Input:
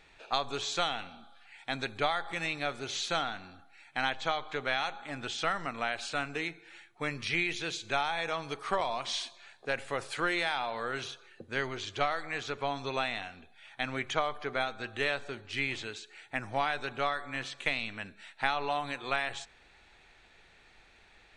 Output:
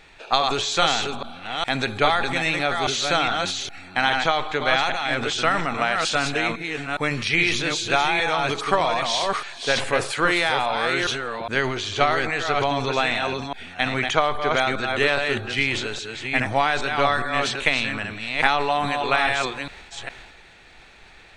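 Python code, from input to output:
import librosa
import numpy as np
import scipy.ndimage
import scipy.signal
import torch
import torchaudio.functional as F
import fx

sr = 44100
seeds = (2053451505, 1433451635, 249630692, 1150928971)

y = fx.reverse_delay(x, sr, ms=410, wet_db=-4)
y = fx.transient(y, sr, attack_db=2, sustain_db=7)
y = F.gain(torch.from_numpy(y), 9.0).numpy()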